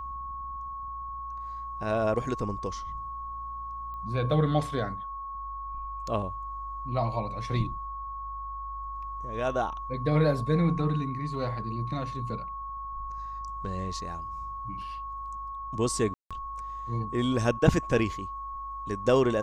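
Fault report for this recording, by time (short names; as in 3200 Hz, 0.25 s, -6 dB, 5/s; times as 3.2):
tone 1100 Hz -35 dBFS
3.94 pop -32 dBFS
16.14–16.31 gap 0.166 s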